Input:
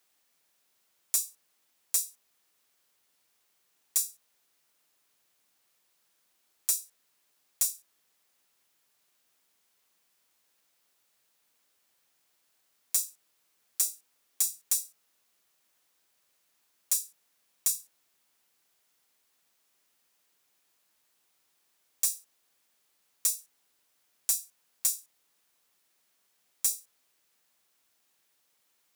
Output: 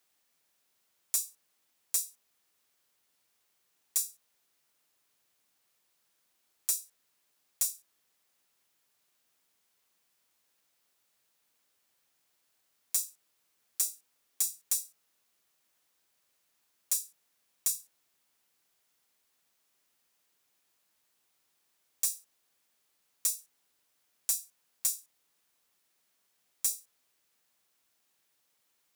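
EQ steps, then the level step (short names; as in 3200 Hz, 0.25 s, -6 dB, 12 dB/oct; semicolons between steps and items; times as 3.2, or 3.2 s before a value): low shelf 140 Hz +3.5 dB; -2.5 dB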